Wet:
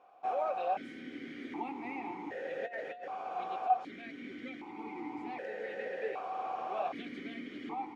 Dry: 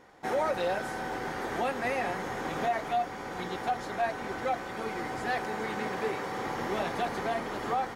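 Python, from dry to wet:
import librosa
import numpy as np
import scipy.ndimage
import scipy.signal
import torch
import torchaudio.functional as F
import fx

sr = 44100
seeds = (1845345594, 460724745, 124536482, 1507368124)

y = fx.over_compress(x, sr, threshold_db=-33.0, ratio=-1.0, at=(2.66, 3.7))
y = fx.vowel_held(y, sr, hz=1.3)
y = y * 10.0 ** (4.5 / 20.0)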